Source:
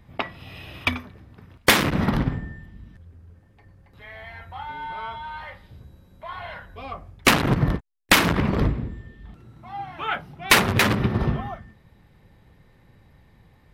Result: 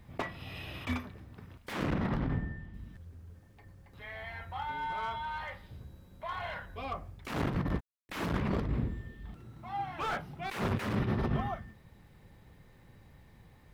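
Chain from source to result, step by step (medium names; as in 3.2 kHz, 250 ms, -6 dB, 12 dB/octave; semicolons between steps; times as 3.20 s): word length cut 12-bit, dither none; compressor with a negative ratio -25 dBFS, ratio -1; 1.73–2.74 s: low-pass 2.8 kHz 6 dB/octave; slew-rate limiter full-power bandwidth 73 Hz; trim -6.5 dB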